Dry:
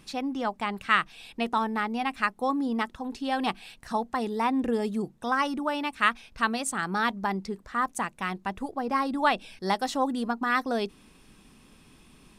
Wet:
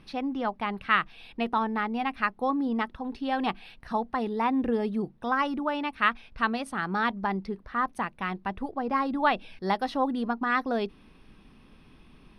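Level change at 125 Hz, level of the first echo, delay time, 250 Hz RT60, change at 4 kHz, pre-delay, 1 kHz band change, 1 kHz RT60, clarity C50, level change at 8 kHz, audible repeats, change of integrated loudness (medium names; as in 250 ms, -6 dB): +0.5 dB, no echo, no echo, no reverb, -3.0 dB, no reverb, 0.0 dB, no reverb, no reverb, under -15 dB, no echo, -0.5 dB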